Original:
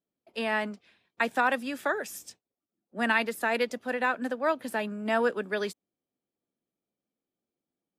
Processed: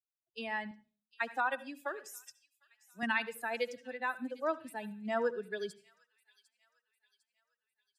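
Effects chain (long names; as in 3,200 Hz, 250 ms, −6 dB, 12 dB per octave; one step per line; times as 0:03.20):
spectral dynamics exaggerated over time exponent 2
0:00.71–0:03.03: high-pass filter 340 Hz 6 dB per octave
delay with a high-pass on its return 752 ms, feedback 47%, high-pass 3,200 Hz, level −16.5 dB
convolution reverb RT60 0.40 s, pre-delay 65 ms, DRR 15.5 dB
level −4 dB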